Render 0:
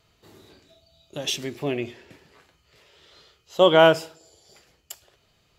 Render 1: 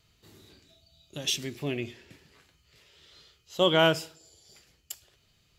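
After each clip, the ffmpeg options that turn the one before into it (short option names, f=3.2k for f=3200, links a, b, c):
-af "equalizer=f=710:t=o:w=2.5:g=-9"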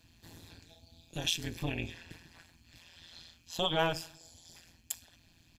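-af "acompressor=threshold=-36dB:ratio=2,aecho=1:1:1.2:0.85,tremolo=f=170:d=1,volume=4.5dB"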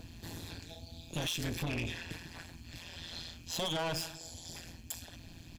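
-filter_complex "[0:a]acrossover=split=730[a][b];[a]acompressor=mode=upward:threshold=-50dB:ratio=2.5[c];[c][b]amix=inputs=2:normalize=0,alimiter=level_in=1.5dB:limit=-24dB:level=0:latency=1:release=76,volume=-1.5dB,asoftclip=type=tanh:threshold=-38.5dB,volume=8.5dB"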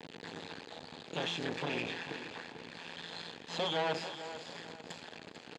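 -af "acrusher=bits=5:dc=4:mix=0:aa=0.000001,highpass=220,equalizer=f=460:t=q:w=4:g=7,equalizer=f=860:t=q:w=4:g=5,equalizer=f=1.7k:t=q:w=4:g=4,equalizer=f=5.6k:t=q:w=4:g=-10,lowpass=f=5.7k:w=0.5412,lowpass=f=5.7k:w=1.3066,aecho=1:1:445|890|1335|1780:0.251|0.0929|0.0344|0.0127,volume=5dB"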